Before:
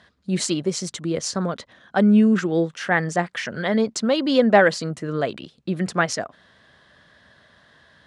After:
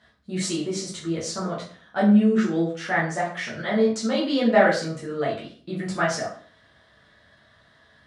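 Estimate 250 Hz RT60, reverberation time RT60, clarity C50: 0.55 s, 0.45 s, 6.5 dB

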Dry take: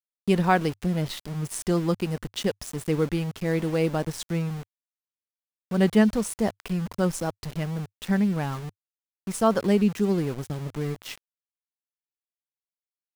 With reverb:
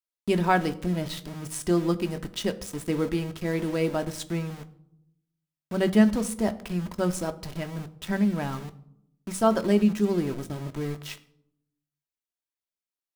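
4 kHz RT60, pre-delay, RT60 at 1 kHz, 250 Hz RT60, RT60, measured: 0.45 s, 3 ms, 0.65 s, 1.0 s, 0.75 s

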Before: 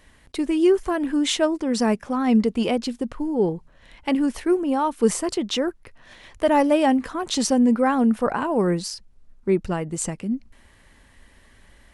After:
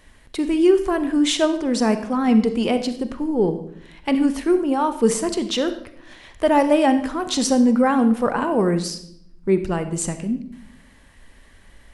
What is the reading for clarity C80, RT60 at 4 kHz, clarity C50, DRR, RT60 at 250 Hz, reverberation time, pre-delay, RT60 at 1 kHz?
13.5 dB, 0.60 s, 11.0 dB, 9.5 dB, 1.1 s, 0.70 s, 33 ms, 0.60 s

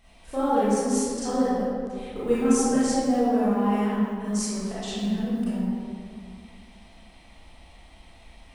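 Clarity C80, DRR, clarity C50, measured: -2.0 dB, -11.5 dB, -5.5 dB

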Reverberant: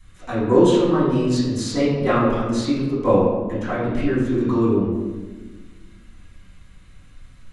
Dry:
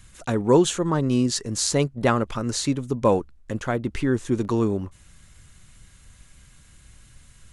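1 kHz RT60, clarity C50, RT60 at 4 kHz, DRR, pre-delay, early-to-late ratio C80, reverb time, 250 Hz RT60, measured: 1.2 s, 0.0 dB, 0.85 s, -14.0 dB, 3 ms, 2.5 dB, 1.3 s, 2.0 s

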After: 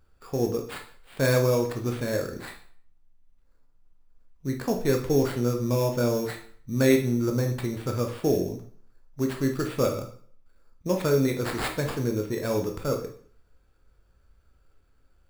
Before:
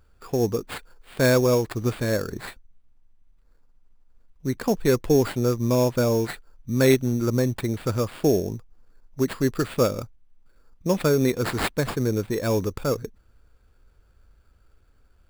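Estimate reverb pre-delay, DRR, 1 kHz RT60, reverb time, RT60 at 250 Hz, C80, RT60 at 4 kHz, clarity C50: 7 ms, 2.5 dB, 0.50 s, 0.50 s, 0.50 s, 13.0 dB, 0.45 s, 8.5 dB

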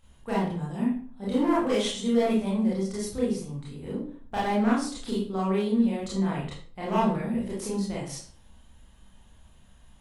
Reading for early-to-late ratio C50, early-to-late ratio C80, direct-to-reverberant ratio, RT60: 2.5 dB, 8.0 dB, -7.5 dB, 0.50 s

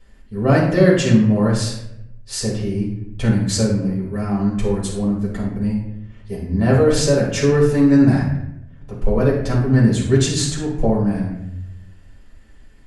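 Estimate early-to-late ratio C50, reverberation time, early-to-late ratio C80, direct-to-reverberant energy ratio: 3.0 dB, 0.80 s, 7.0 dB, -6.5 dB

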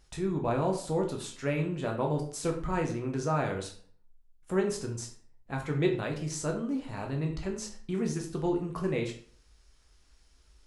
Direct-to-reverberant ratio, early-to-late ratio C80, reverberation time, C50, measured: 1.0 dB, 12.5 dB, 0.50 s, 8.0 dB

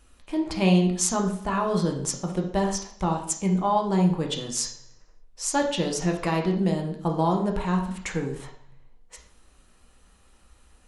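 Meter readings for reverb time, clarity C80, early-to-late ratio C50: 0.60 s, 11.0 dB, 7.0 dB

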